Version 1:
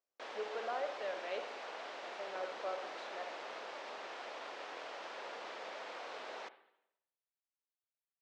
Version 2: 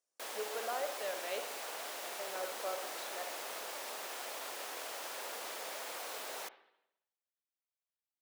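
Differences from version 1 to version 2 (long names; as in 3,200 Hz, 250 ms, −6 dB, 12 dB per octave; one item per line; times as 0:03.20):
background: remove Bessel low-pass filter 7,000 Hz, order 2
master: remove high-frequency loss of the air 180 metres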